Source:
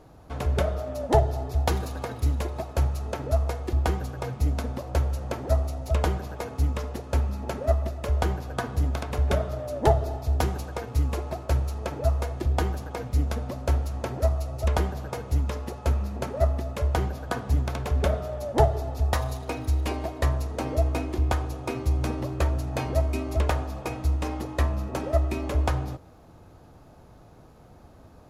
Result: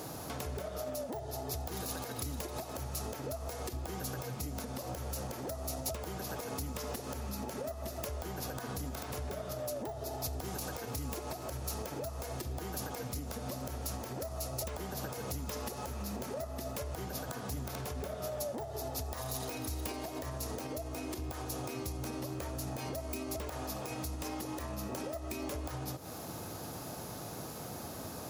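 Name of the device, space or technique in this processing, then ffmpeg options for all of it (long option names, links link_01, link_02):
broadcast voice chain: -af "highpass=120,deesser=1,acompressor=threshold=-42dB:ratio=4,equalizer=frequency=5300:width_type=o:width=0.66:gain=3,alimiter=level_in=16dB:limit=-24dB:level=0:latency=1:release=142,volume=-16dB,aemphasis=mode=production:type=75fm,volume=9.5dB"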